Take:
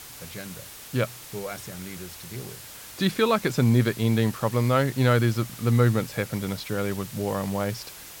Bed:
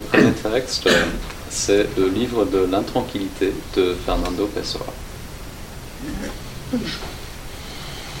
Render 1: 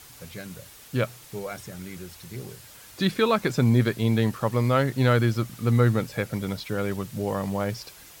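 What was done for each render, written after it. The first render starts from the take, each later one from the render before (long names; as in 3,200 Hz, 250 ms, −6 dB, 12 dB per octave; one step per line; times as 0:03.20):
broadband denoise 6 dB, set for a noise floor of −43 dBFS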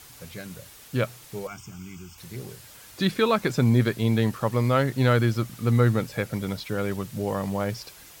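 0:01.47–0:02.18: phaser with its sweep stopped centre 2,700 Hz, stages 8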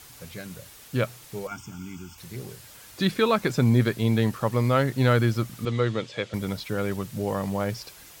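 0:01.51–0:02.15: hollow resonant body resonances 260/890/1,400/3,400 Hz, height 9 dB
0:05.65–0:06.34: loudspeaker in its box 160–6,800 Hz, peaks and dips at 170 Hz −8 dB, 250 Hz −7 dB, 790 Hz −6 dB, 1,500 Hz −5 dB, 3,300 Hz +9 dB, 5,600 Hz −3 dB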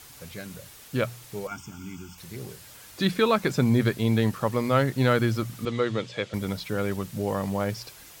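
mains-hum notches 60/120/180 Hz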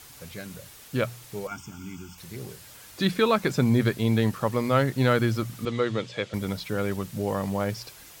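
no processing that can be heard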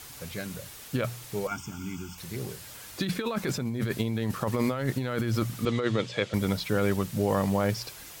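compressor whose output falls as the input rises −27 dBFS, ratio −1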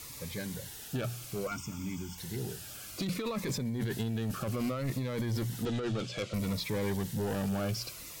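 soft clipping −27.5 dBFS, distortion −9 dB
phaser whose notches keep moving one way falling 0.62 Hz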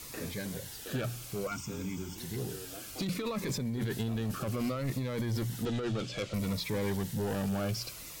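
mix in bed −29.5 dB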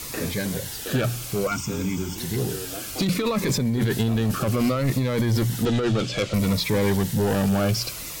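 level +11 dB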